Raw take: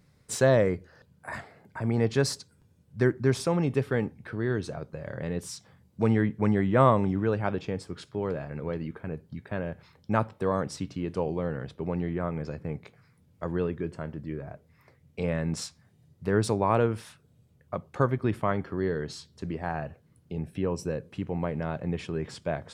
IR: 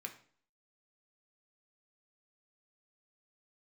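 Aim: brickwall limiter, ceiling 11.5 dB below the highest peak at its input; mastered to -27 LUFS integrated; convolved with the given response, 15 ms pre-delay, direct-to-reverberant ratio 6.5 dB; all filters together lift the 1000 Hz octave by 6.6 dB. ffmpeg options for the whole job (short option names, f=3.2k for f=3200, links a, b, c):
-filter_complex "[0:a]equalizer=f=1k:t=o:g=8,alimiter=limit=-15dB:level=0:latency=1,asplit=2[a][b];[1:a]atrim=start_sample=2205,adelay=15[c];[b][c]afir=irnorm=-1:irlink=0,volume=-4dB[d];[a][d]amix=inputs=2:normalize=0,volume=3dB"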